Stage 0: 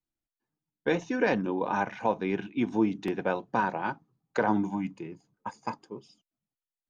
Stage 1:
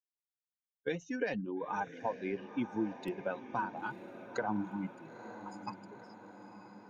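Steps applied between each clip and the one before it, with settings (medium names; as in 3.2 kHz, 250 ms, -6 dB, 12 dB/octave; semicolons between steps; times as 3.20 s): expander on every frequency bin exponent 2; compression 2.5:1, threshold -33 dBFS, peak gain reduction 8.5 dB; echo that smears into a reverb 941 ms, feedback 59%, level -12 dB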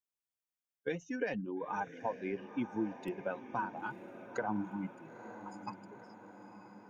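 peaking EQ 4.1 kHz -10 dB 0.29 oct; trim -1 dB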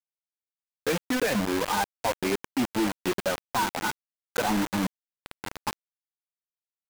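companded quantiser 2-bit; trim +3 dB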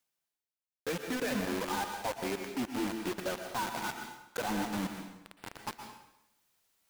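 reverse; upward compressor, threshold -43 dBFS; reverse; plate-style reverb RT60 0.87 s, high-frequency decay 0.95×, pre-delay 105 ms, DRR 5 dB; trim -8.5 dB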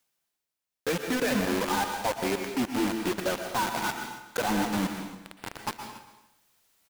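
delay 280 ms -18 dB; trim +6.5 dB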